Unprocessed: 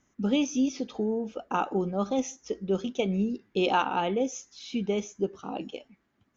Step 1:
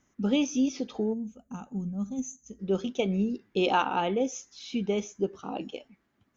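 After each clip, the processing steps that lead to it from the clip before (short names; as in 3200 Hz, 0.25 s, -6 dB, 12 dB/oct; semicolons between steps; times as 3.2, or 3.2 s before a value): spectral gain 1.13–2.6, 260–6000 Hz -19 dB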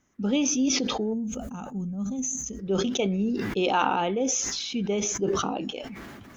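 sustainer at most 23 dB/s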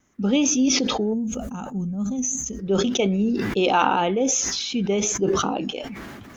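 vibrato 2.6 Hz 31 cents; gain +4.5 dB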